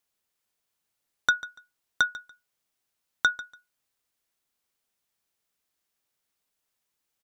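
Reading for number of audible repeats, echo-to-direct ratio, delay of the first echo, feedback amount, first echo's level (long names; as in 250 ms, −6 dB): 2, −17.0 dB, 144 ms, 20%, −17.0 dB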